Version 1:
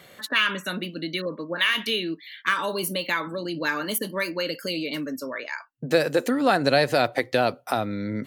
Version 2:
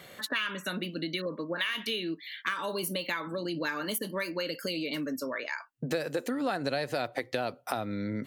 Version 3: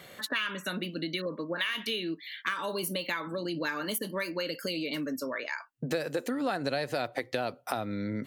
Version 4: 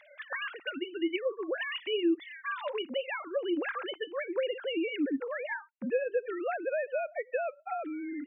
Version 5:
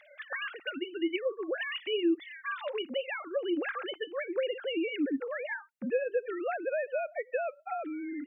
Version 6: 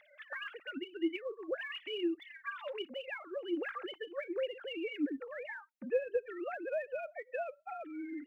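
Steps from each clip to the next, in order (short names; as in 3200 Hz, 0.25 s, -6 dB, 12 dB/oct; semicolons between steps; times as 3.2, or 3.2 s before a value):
compressor 3:1, threshold -31 dBFS, peak gain reduction 12.5 dB
nothing audible
sine-wave speech
notch 980 Hz, Q 6
phaser 1.3 Hz, delay 3.9 ms, feedback 47%; gain -7 dB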